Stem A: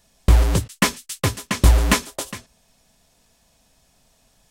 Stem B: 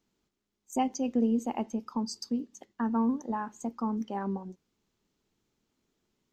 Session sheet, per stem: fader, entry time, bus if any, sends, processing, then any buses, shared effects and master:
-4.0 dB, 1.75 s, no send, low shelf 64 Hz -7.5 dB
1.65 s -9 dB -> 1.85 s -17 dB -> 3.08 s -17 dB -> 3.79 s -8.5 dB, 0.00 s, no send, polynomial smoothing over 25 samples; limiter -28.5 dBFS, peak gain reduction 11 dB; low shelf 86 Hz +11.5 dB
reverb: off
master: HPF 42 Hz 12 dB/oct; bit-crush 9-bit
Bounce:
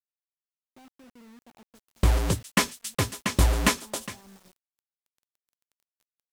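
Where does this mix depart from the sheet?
stem B -9.0 dB -> -19.0 dB; master: missing HPF 42 Hz 12 dB/oct

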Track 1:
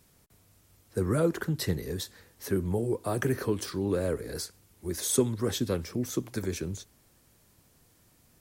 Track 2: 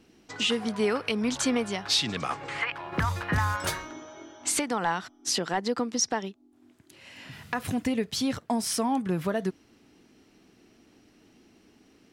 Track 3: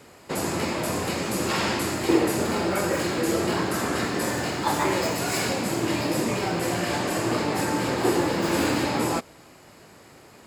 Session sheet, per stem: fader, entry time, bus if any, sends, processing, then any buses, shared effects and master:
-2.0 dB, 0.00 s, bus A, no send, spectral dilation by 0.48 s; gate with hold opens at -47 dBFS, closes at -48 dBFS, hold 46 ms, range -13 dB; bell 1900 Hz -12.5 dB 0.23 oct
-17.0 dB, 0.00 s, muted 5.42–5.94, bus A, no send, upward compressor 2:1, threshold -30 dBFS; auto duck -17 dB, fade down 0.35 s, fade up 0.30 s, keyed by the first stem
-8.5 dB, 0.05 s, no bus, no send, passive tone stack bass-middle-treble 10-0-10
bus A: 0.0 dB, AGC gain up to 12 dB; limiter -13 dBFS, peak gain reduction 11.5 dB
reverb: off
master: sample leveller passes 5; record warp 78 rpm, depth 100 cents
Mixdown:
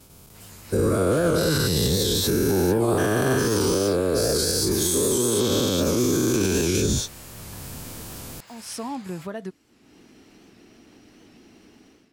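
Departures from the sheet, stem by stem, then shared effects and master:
stem 1 -2.0 dB -> +7.0 dB; stem 3 -8.5 dB -> -15.0 dB; master: missing sample leveller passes 5

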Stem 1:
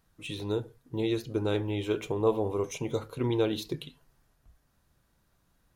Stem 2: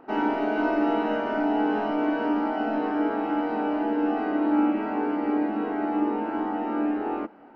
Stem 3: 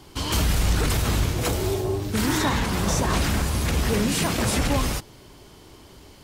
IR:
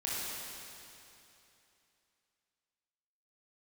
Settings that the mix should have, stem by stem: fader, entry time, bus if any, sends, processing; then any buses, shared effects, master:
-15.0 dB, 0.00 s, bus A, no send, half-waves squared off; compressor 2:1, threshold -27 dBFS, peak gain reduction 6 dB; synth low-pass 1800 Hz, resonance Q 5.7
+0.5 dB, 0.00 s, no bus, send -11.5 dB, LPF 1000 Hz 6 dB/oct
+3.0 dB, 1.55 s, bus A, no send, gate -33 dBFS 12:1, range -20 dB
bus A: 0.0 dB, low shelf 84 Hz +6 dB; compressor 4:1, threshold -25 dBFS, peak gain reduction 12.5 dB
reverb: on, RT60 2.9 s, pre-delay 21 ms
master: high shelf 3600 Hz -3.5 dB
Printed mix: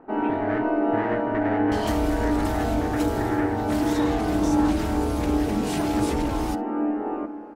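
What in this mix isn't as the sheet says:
stem 1 -15.0 dB -> -6.0 dB; stem 3 +3.0 dB -> -5.5 dB

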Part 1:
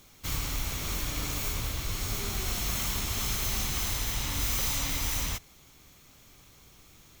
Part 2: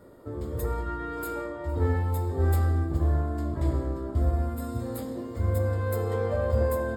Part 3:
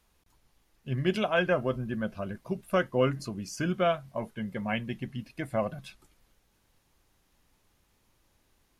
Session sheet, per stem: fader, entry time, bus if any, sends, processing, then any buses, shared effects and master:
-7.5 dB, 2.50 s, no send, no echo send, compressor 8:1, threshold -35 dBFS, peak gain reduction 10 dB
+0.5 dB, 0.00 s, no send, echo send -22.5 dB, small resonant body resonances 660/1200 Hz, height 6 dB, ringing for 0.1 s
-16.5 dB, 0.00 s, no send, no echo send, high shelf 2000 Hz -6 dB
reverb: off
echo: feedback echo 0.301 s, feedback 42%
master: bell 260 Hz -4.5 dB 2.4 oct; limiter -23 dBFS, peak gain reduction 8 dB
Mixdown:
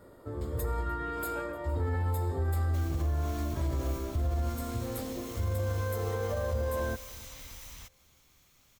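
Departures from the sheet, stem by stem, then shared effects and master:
stem 2: missing small resonant body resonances 660/1200 Hz, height 6 dB, ringing for 0.1 s; stem 3 -16.5 dB -> -22.5 dB

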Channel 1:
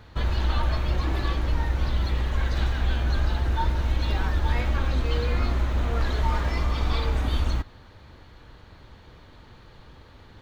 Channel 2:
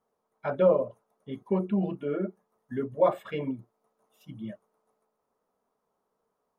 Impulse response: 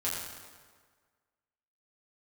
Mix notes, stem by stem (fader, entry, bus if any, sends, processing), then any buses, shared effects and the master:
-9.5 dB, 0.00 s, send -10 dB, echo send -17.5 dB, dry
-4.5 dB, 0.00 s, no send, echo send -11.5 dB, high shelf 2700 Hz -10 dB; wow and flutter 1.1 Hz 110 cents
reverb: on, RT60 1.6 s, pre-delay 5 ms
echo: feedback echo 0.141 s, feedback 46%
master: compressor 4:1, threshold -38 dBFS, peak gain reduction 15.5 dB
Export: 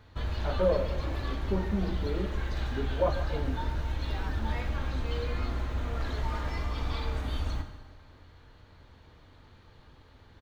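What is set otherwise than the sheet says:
stem 2: missing wow and flutter 1.1 Hz 110 cents; master: missing compressor 4:1, threshold -38 dBFS, peak gain reduction 15.5 dB

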